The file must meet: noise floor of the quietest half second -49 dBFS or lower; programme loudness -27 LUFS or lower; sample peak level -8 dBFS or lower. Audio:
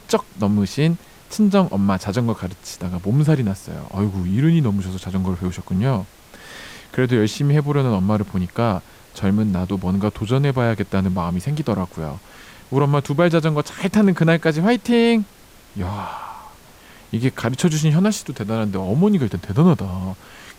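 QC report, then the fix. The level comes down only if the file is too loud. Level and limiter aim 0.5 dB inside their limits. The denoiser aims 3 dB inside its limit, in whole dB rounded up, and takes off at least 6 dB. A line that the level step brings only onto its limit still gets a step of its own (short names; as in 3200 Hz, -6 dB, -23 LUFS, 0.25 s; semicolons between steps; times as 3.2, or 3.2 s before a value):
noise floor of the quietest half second -46 dBFS: fail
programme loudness -20.0 LUFS: fail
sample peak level -5.5 dBFS: fail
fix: gain -7.5 dB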